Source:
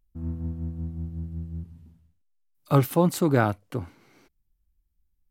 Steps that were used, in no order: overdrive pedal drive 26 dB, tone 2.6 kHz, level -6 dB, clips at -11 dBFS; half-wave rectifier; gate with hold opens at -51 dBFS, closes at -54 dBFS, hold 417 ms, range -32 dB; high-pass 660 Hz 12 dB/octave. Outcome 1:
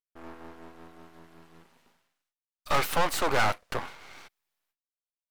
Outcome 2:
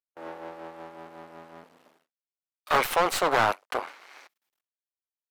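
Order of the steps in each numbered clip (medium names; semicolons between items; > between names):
high-pass > overdrive pedal > half-wave rectifier > gate with hold; half-wave rectifier > high-pass > gate with hold > overdrive pedal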